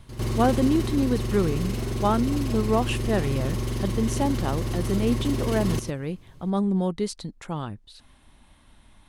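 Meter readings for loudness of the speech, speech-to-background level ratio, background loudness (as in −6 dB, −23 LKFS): −27.0 LKFS, 2.0 dB, −29.0 LKFS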